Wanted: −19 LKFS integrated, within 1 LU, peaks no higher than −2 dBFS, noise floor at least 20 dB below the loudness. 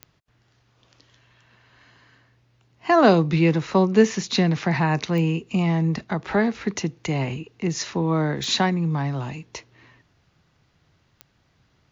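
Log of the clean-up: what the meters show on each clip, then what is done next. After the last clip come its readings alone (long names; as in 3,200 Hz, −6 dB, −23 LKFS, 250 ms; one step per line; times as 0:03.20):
number of clicks 4; integrated loudness −22.0 LKFS; sample peak −4.0 dBFS; target loudness −19.0 LKFS
→ click removal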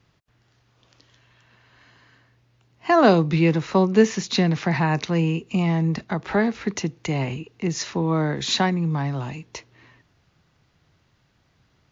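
number of clicks 0; integrated loudness −22.0 LKFS; sample peak −4.0 dBFS; target loudness −19.0 LKFS
→ level +3 dB
brickwall limiter −2 dBFS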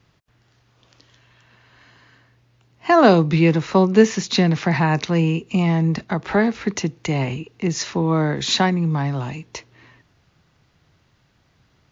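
integrated loudness −19.0 LKFS; sample peak −2.0 dBFS; background noise floor −62 dBFS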